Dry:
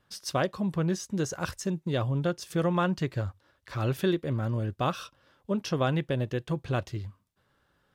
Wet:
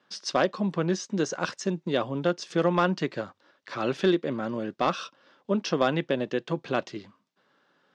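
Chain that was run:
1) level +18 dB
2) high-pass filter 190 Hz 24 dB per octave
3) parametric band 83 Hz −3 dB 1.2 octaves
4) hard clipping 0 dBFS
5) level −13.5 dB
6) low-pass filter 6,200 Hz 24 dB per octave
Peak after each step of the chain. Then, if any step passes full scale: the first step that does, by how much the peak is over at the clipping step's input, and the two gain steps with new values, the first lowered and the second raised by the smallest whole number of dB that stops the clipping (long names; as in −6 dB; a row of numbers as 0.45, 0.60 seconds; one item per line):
+5.0, +4.5, +4.5, 0.0, −13.5, −13.0 dBFS
step 1, 4.5 dB
step 1 +13 dB, step 5 −8.5 dB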